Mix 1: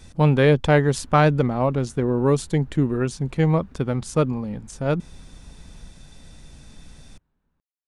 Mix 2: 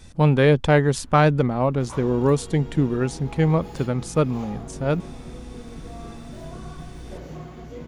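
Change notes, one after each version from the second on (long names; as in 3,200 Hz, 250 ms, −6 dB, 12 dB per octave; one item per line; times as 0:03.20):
second sound: unmuted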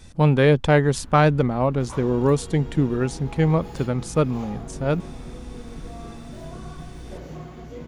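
first sound +6.5 dB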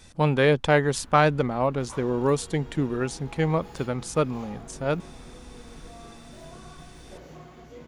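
second sound −3.5 dB
master: add low-shelf EQ 330 Hz −8 dB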